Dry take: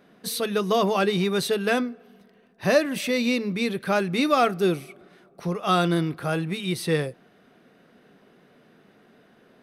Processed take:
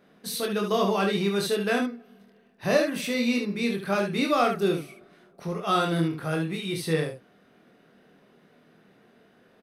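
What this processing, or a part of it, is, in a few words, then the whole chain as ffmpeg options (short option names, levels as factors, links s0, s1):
slapback doubling: -filter_complex "[0:a]asplit=3[s0][s1][s2];[s1]adelay=25,volume=0.668[s3];[s2]adelay=72,volume=0.501[s4];[s0][s3][s4]amix=inputs=3:normalize=0,volume=0.596"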